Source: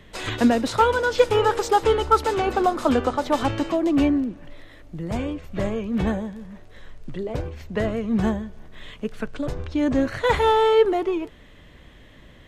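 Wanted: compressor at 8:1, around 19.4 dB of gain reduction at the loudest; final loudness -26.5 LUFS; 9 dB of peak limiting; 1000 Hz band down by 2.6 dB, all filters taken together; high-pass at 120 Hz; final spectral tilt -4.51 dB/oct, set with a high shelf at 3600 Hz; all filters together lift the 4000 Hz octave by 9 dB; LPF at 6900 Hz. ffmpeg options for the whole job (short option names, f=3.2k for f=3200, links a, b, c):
-af "highpass=120,lowpass=6.9k,equalizer=f=1k:t=o:g=-4.5,highshelf=f=3.6k:g=8.5,equalizer=f=4k:t=o:g=7,acompressor=threshold=-33dB:ratio=8,volume=12dB,alimiter=limit=-16.5dB:level=0:latency=1"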